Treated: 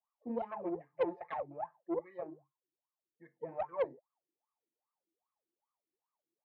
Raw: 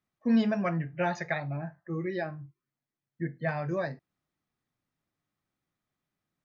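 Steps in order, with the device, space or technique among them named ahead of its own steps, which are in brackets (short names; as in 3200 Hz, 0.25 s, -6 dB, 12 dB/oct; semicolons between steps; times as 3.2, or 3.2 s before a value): wah-wah guitar rig (wah 2.5 Hz 320–1200 Hz, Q 17; tube stage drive 40 dB, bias 0.6; speaker cabinet 92–4000 Hz, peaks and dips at 490 Hz +5 dB, 900 Hz +9 dB, 1500 Hz -6 dB, 2200 Hz +4 dB); gain +10.5 dB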